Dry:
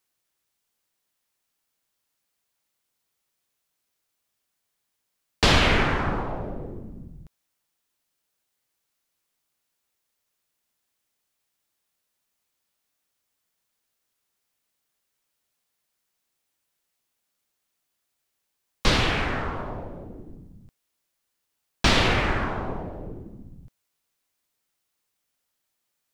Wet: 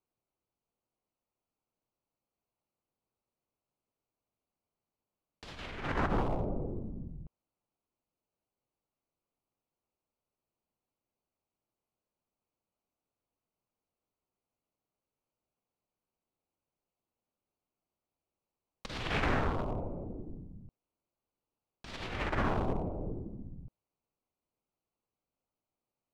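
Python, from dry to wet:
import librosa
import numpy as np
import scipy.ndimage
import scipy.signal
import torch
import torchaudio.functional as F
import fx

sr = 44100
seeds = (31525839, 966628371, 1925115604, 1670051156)

y = fx.wiener(x, sr, points=25)
y = fx.over_compress(y, sr, threshold_db=-27.0, ratio=-0.5)
y = y * librosa.db_to_amplitude(-5.0)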